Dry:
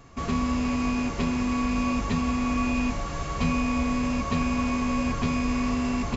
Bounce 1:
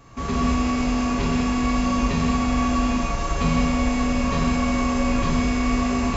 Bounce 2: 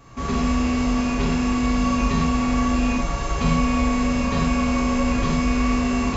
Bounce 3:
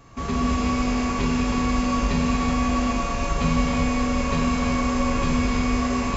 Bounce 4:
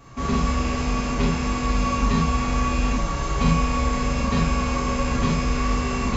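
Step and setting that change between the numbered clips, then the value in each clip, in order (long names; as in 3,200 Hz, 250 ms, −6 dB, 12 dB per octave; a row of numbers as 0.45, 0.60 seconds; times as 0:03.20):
reverb whose tail is shaped and stops, gate: 240, 140, 410, 100 milliseconds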